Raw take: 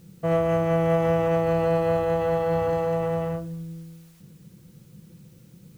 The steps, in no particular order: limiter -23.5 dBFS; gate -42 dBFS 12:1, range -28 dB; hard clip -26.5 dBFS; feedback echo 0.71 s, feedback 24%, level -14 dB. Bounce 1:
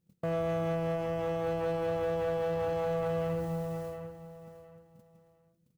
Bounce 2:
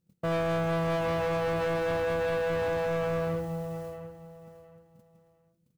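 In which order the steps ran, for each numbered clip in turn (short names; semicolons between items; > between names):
gate > feedback echo > limiter > hard clip; gate > feedback echo > hard clip > limiter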